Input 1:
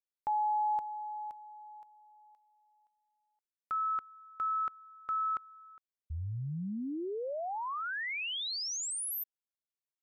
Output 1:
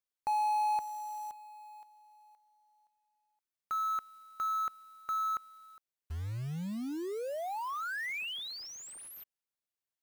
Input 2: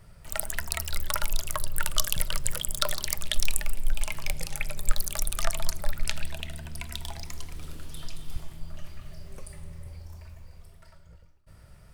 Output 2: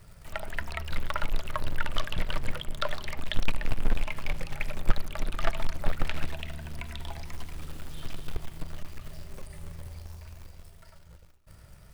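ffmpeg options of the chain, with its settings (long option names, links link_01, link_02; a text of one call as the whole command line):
ffmpeg -i in.wav -filter_complex "[0:a]acrusher=bits=3:mode=log:mix=0:aa=0.000001,acrossover=split=3300[link_01][link_02];[link_02]acompressor=threshold=-49dB:ratio=4:attack=1:release=60[link_03];[link_01][link_03]amix=inputs=2:normalize=0" out.wav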